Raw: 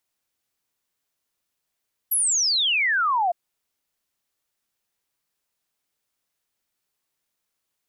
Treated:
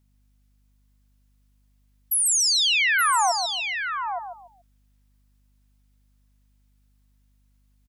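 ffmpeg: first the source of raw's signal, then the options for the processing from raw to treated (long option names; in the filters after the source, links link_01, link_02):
-f lavfi -i "aevalsrc='0.119*clip(min(t,1.21-t)/0.01,0,1)*sin(2*PI*12000*1.21/log(670/12000)*(exp(log(670/12000)*t/1.21)-1))':duration=1.21:sample_rate=44100"
-filter_complex "[0:a]asplit=2[link_01][link_02];[link_02]aecho=0:1:871:0.422[link_03];[link_01][link_03]amix=inputs=2:normalize=0,aeval=exprs='val(0)+0.000708*(sin(2*PI*50*n/s)+sin(2*PI*2*50*n/s)/2+sin(2*PI*3*50*n/s)/3+sin(2*PI*4*50*n/s)/4+sin(2*PI*5*50*n/s)/5)':channel_layout=same,asplit=2[link_04][link_05];[link_05]aecho=0:1:143|286|429:0.447|0.125|0.035[link_06];[link_04][link_06]amix=inputs=2:normalize=0"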